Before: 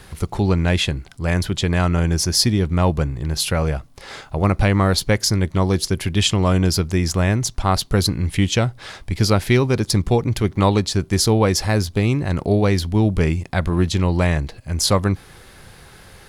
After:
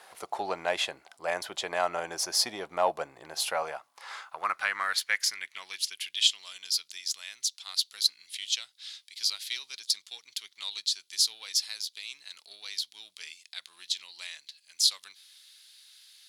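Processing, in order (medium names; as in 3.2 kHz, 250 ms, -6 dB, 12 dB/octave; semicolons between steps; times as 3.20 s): Chebyshev shaper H 8 -35 dB, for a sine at -2.5 dBFS; high-pass sweep 690 Hz -> 3.8 kHz, 3.39–6.41 s; trim -8.5 dB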